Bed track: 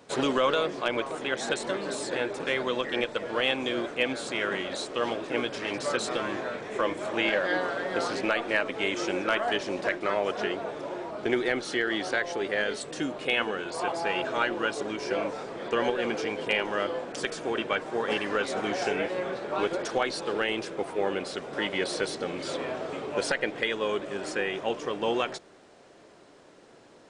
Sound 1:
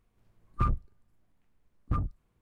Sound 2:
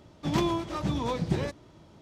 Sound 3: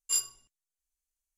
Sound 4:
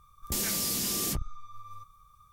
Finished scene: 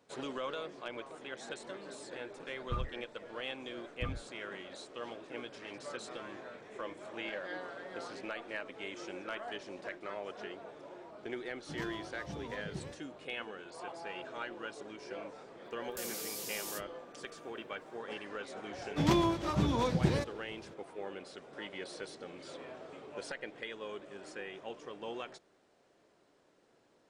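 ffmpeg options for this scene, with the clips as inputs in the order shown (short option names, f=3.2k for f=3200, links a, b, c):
-filter_complex "[2:a]asplit=2[a][b];[0:a]volume=-14.5dB[c];[4:a]highpass=f=360:p=1[d];[1:a]atrim=end=2.41,asetpts=PTS-STARTPTS,volume=-9.5dB,afade=t=in:d=0.004:c=hsin,afade=t=out:st=2.406:d=0.004:c=hsin,adelay=2110[e];[a]atrim=end=2.01,asetpts=PTS-STARTPTS,volume=-15.5dB,afade=t=in:d=0.004:c=hsin,afade=t=out:st=2.006:d=0.004:c=hsin,adelay=11440[f];[d]atrim=end=2.32,asetpts=PTS-STARTPTS,volume=-11.5dB,afade=t=in:d=0.004:c=hsin,afade=t=out:st=2.316:d=0.004:c=hsin,adelay=15650[g];[b]atrim=end=2.01,asetpts=PTS-STARTPTS,volume=-1dB,afade=t=in:d=0.004:c=hsin,afade=t=out:st=2.006:d=0.004:c=hsin,adelay=18730[h];[c][e][f][g][h]amix=inputs=5:normalize=0"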